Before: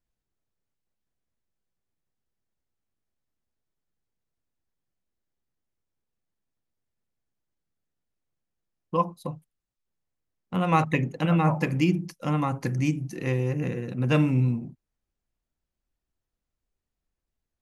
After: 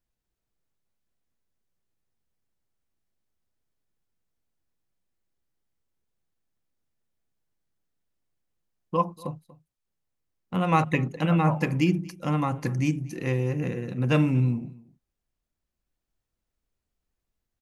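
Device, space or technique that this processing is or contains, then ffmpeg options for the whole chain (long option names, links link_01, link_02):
ducked delay: -filter_complex "[0:a]asplit=3[link_01][link_02][link_03];[link_02]adelay=238,volume=-3dB[link_04];[link_03]apad=whole_len=787309[link_05];[link_04][link_05]sidechaincompress=threshold=-42dB:ratio=6:attack=11:release=1080[link_06];[link_01][link_06]amix=inputs=2:normalize=0"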